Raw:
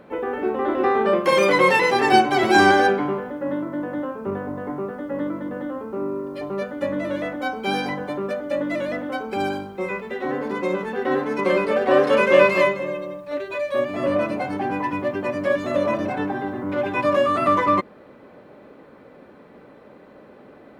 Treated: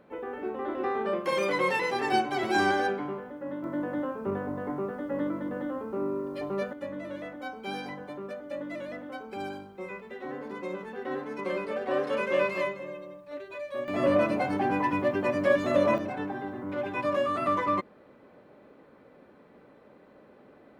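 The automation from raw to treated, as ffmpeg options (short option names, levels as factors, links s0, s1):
-af "asetnsamples=n=441:p=0,asendcmd='3.64 volume volume -4dB;6.73 volume volume -12dB;13.88 volume volume -2dB;15.98 volume volume -8.5dB',volume=0.299"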